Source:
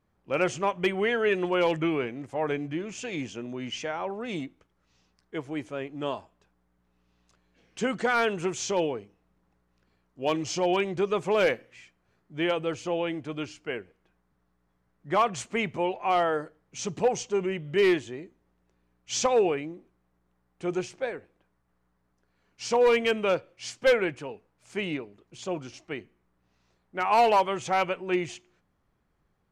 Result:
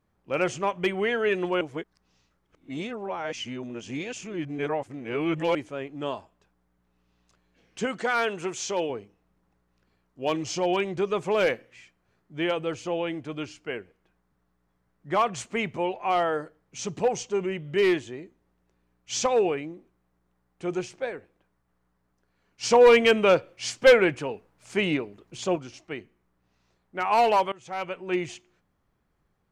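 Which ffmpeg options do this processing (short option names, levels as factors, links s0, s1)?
-filter_complex "[0:a]asettb=1/sr,asplit=3[s0][s1][s2];[s0]atrim=end=7.854[s3];[s1]atrim=start=7.85:end=8.9,asetpts=PTS-STARTPTS,afade=t=in:d=0.004:c=qsin,afade=t=out:st=1.046:d=0.004:c=qsin,lowshelf=f=210:g=-9[s4];[s2]atrim=start=8.896[s5];[s3][s4]acrossfade=d=0.004:c1=hsin:c2=qsin[s6];[s6][s5]acrossfade=d=0.004:c1=qsin:c2=hsin,asettb=1/sr,asplit=3[s7][s8][s9];[s7]atrim=end=22.634[s10];[s8]atrim=start=22.63:end=25.56,asetpts=PTS-STARTPTS,afade=t=in:d=0.004:c=qsin,afade=t=out:st=2.926:d=0.004:c=qsin,acontrast=54[s11];[s9]atrim=start=25.556[s12];[s10][s11]acrossfade=d=0.004:c1=hsin:c2=qsin[s13];[s13][s12]acrossfade=d=0.004:c1=qsin:c2=hsin,asplit=4[s14][s15][s16][s17];[s14]atrim=end=1.612[s18];[s15]atrim=start=1.608:end=5.552,asetpts=PTS-STARTPTS,areverse[s19];[s16]atrim=start=5.548:end=27.52,asetpts=PTS-STARTPTS,afade=t=out:st=21.968:d=0.004:c=hsin:silence=0.0707946[s20];[s17]atrim=start=27.52,asetpts=PTS-STARTPTS,afade=t=in:d=0.65:silence=0.0707946[s21];[s18][s19]acrossfade=d=0.004:c1=hsin:c2=hsin[s22];[s20][s21]concat=n=2:v=0:a=1[s23];[s22][s23]acrossfade=d=0.004:c1=hsin:c2=hsin"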